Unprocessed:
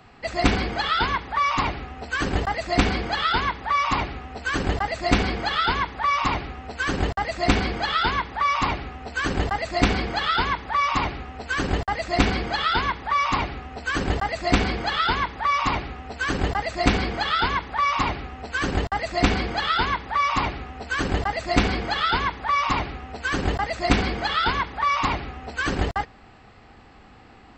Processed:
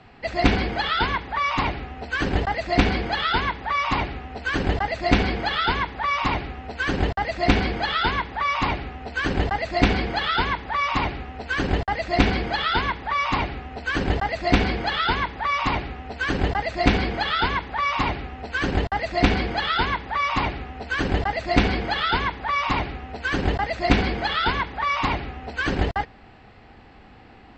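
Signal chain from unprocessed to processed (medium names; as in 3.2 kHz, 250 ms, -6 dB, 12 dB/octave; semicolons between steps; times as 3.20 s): low-pass 4.5 kHz 12 dB/octave; peaking EQ 1.2 kHz -5 dB 0.36 oct; trim +1.5 dB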